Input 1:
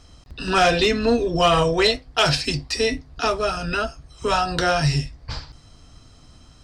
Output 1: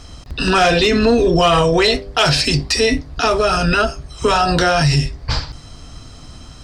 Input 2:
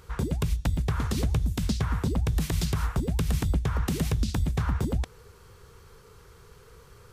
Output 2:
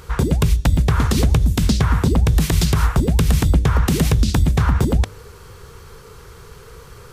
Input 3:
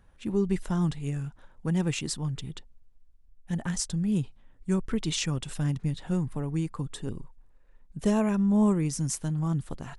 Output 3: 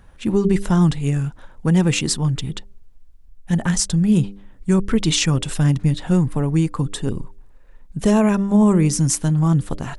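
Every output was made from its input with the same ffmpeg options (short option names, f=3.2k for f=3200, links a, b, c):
-af "bandreject=f=99.3:t=h:w=4,bandreject=f=198.6:t=h:w=4,bandreject=f=297.9:t=h:w=4,bandreject=f=397.2:t=h:w=4,bandreject=f=496.5:t=h:w=4,bandreject=f=595.8:t=h:w=4,alimiter=level_in=17dB:limit=-1dB:release=50:level=0:latency=1,volume=-5.5dB"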